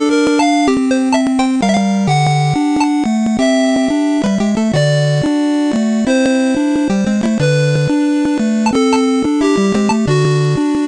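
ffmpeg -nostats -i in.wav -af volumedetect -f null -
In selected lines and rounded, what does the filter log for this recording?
mean_volume: -12.8 dB
max_volume: -5.6 dB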